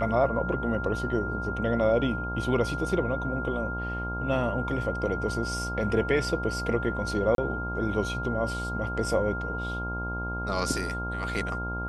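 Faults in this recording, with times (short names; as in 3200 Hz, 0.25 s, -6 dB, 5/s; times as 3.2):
buzz 60 Hz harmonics 18 -34 dBFS
tone 1400 Hz -33 dBFS
7.35–7.38 gap 32 ms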